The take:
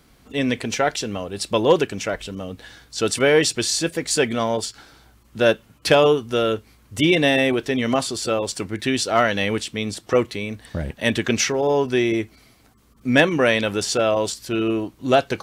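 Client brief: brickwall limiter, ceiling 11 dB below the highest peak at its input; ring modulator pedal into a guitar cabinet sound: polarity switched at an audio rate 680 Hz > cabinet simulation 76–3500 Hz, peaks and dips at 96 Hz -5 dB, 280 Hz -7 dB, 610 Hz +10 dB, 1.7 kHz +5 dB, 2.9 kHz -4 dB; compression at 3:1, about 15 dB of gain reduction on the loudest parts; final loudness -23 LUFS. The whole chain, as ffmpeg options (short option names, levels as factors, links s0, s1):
-af "acompressor=threshold=0.0251:ratio=3,alimiter=level_in=1.26:limit=0.0631:level=0:latency=1,volume=0.794,aeval=exprs='val(0)*sgn(sin(2*PI*680*n/s))':c=same,highpass=76,equalizer=f=96:t=q:w=4:g=-5,equalizer=f=280:t=q:w=4:g=-7,equalizer=f=610:t=q:w=4:g=10,equalizer=f=1700:t=q:w=4:g=5,equalizer=f=2900:t=q:w=4:g=-4,lowpass=f=3500:w=0.5412,lowpass=f=3500:w=1.3066,volume=4.22"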